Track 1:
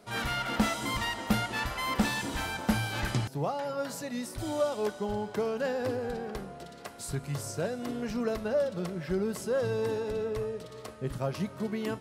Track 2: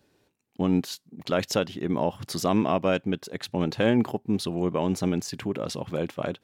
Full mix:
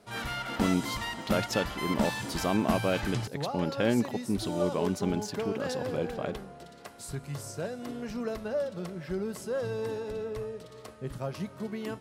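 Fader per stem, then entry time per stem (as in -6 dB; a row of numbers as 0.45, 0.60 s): -3.0, -4.5 dB; 0.00, 0.00 s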